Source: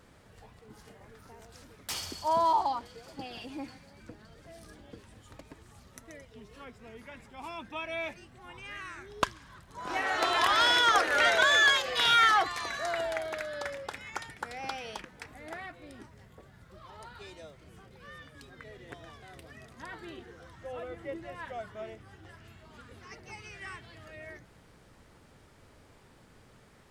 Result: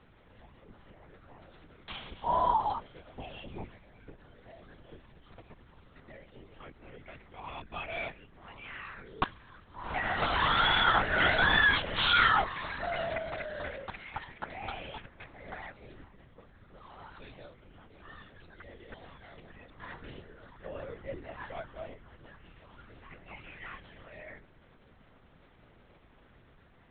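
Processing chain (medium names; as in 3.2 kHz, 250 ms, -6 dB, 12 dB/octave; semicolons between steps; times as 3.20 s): LPC vocoder at 8 kHz whisper; trim -1.5 dB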